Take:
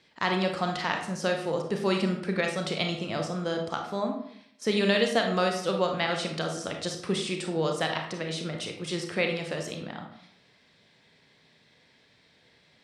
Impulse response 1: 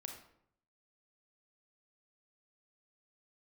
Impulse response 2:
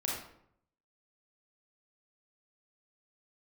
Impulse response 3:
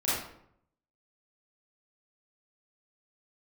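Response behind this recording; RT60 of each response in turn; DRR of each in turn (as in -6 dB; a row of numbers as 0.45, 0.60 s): 1; 0.70, 0.70, 0.70 s; 2.5, -4.0, -10.5 dB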